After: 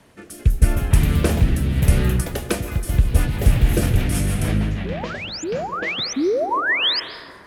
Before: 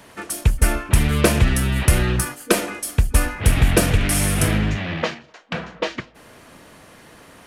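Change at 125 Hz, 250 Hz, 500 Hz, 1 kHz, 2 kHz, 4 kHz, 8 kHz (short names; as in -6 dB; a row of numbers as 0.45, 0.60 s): +1.0, 0.0, 0.0, +1.0, 0.0, +4.0, -7.0 dB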